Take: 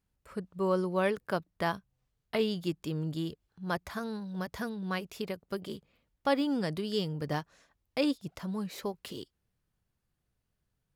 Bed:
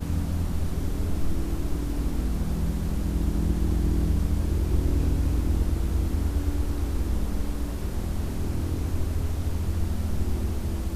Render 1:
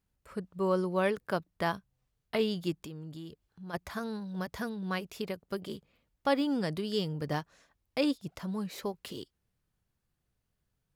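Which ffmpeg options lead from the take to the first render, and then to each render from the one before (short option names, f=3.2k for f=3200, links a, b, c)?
-filter_complex "[0:a]asplit=3[a][b][c];[a]afade=t=out:st=2.85:d=0.02[d];[b]acompressor=threshold=-44dB:ratio=2.5:attack=3.2:release=140:knee=1:detection=peak,afade=t=in:st=2.85:d=0.02,afade=t=out:st=3.73:d=0.02[e];[c]afade=t=in:st=3.73:d=0.02[f];[d][e][f]amix=inputs=3:normalize=0"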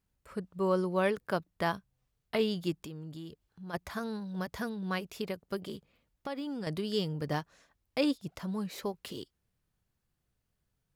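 -filter_complex "[0:a]asettb=1/sr,asplit=3[a][b][c];[a]atrim=end=5.694[d];[b]atrim=start=5.69:end=6.67,asetpts=PTS-STARTPTS,afade=t=in:d=0.004:c=qsin,afade=t=out:st=0.976:d=0.004:c=qsin,acompressor=threshold=-34dB:ratio=6:attack=3.2:release=140:knee=1:detection=peak[e];[c]atrim=start=6.666[f];[d][e]acrossfade=d=0.004:c1=hsin:c2=qsin[g];[g][f]acrossfade=d=0.004:c1=qsin:c2=hsin"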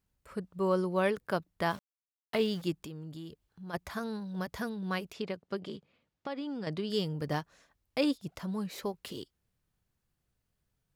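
-filter_complex "[0:a]asettb=1/sr,asplit=3[a][b][c];[a]atrim=end=1.704[d];[b]atrim=start=1.7:end=2.62,asetpts=PTS-STARTPTS,afade=t=in:d=0.004:c=qsin,afade=t=out:st=0.916:d=0.004:c=qsin,aeval=exprs='val(0)*gte(abs(val(0)),0.00501)':c=same[e];[c]atrim=start=2.616[f];[d][e]acrossfade=d=0.004:c1=hsin:c2=qsin[g];[g][f]acrossfade=d=0.004:c1=qsin:c2=hsin,asplit=3[h][i][j];[h]afade=t=out:st=5.12:d=0.02[k];[i]highpass=110,lowpass=5.4k,afade=t=in:st=5.12:d=0.02,afade=t=out:st=6.89:d=0.02[l];[j]afade=t=in:st=6.89:d=0.02[m];[k][l][m]amix=inputs=3:normalize=0"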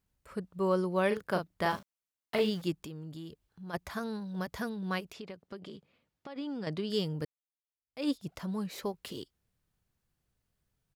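-filter_complex "[0:a]asplit=3[a][b][c];[a]afade=t=out:st=1.1:d=0.02[d];[b]asplit=2[e][f];[f]adelay=38,volume=-6dB[g];[e][g]amix=inputs=2:normalize=0,afade=t=in:st=1.1:d=0.02,afade=t=out:st=2.49:d=0.02[h];[c]afade=t=in:st=2.49:d=0.02[i];[d][h][i]amix=inputs=3:normalize=0,asettb=1/sr,asplit=3[j][k][l];[j]atrim=end=5.004[m];[k]atrim=start=5:end=6.36,asetpts=PTS-STARTPTS,afade=t=in:d=0.004:c=qsin,afade=t=out:st=1.356:d=0.004:c=qsin,acompressor=threshold=-43dB:ratio=2.5:attack=3.2:release=140:knee=1:detection=peak[n];[l]atrim=start=6.356[o];[m][n]acrossfade=d=0.004:c1=hsin:c2=qsin[p];[p][o]acrossfade=d=0.004:c1=qsin:c2=hsin,asplit=2[q][r];[q]atrim=end=7.25,asetpts=PTS-STARTPTS,afade=t=out:st=7.246:d=0.004:c=hsin[s];[r]atrim=start=7.25,asetpts=PTS-STARTPTS,afade=t=in:d=0.84:c=exp[t];[s][t]concat=n=2:v=0:a=1"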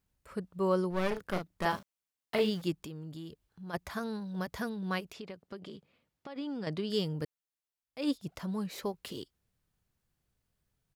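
-filter_complex "[0:a]asettb=1/sr,asplit=3[a][b][c];[a]atrim=end=0.904[d];[b]atrim=start=0.9:end=1.65,asetpts=PTS-STARTPTS,afade=t=in:d=0.004:c=qsin,afade=t=out:st=0.746:d=0.004:c=qsin,aeval=exprs='clip(val(0),-1,0.0106)':c=same[e];[c]atrim=start=1.646[f];[d][e]acrossfade=d=0.004:c1=hsin:c2=qsin[g];[g][f]acrossfade=d=0.004:c1=qsin:c2=hsin"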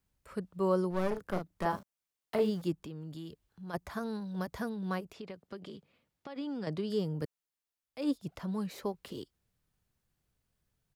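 -filter_complex "[0:a]acrossover=split=230|1500|5000[a][b][c][d];[c]acompressor=threshold=-52dB:ratio=6[e];[d]alimiter=level_in=19dB:limit=-24dB:level=0:latency=1:release=282,volume=-19dB[f];[a][b][e][f]amix=inputs=4:normalize=0"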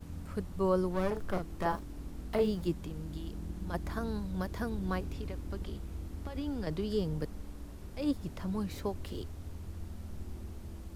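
-filter_complex "[1:a]volume=-16dB[a];[0:a][a]amix=inputs=2:normalize=0"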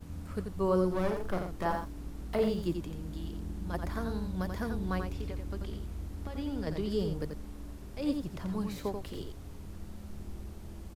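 -af "aecho=1:1:87:0.501"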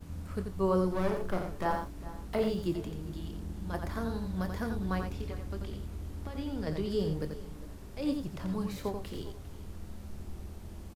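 -filter_complex "[0:a]asplit=2[a][b];[b]adelay=26,volume=-11dB[c];[a][c]amix=inputs=2:normalize=0,aecho=1:1:404:0.133"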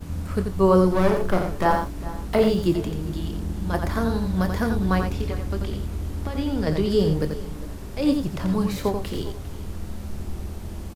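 -af "volume=11dB"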